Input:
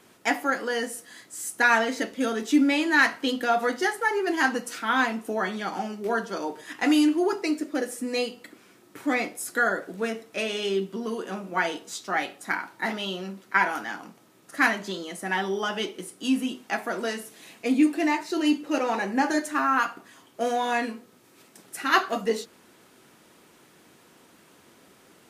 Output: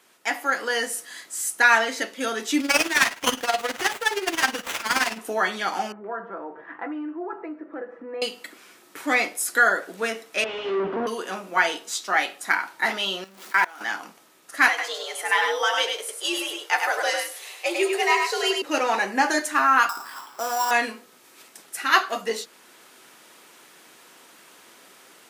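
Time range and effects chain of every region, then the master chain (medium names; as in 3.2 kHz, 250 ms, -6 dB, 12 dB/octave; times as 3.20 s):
2.60–5.18 s: resonant high shelf 2.2 kHz +11 dB, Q 1.5 + tremolo 19 Hz, depth 73% + sliding maximum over 9 samples
5.92–8.22 s: low-pass 1.5 kHz 24 dB/octave + comb 6 ms, depth 39% + compression 2:1, threshold -38 dBFS
10.44–11.07 s: overdrive pedal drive 38 dB, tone 1.1 kHz, clips at -16.5 dBFS + tape spacing loss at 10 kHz 37 dB + three bands expanded up and down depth 100%
13.24–13.81 s: jump at every zero crossing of -35 dBFS + high-pass 140 Hz + level held to a coarse grid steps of 24 dB
14.68–18.62 s: high-pass 330 Hz 24 dB/octave + frequency shift +83 Hz + delay 101 ms -4.5 dB
19.89–20.71 s: high-order bell 1.1 kHz +13.5 dB 1.2 oct + sample-rate reducer 6.5 kHz + compression 2:1, threshold -35 dBFS
whole clip: level rider gain up to 8 dB; high-pass 880 Hz 6 dB/octave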